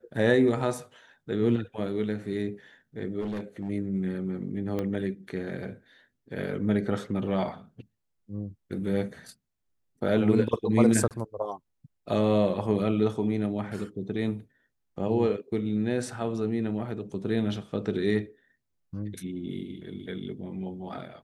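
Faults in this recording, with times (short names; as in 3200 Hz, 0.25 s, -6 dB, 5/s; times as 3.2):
3.2–3.7 clipped -28.5 dBFS
4.79 pop -19 dBFS
11.08–11.11 gap 28 ms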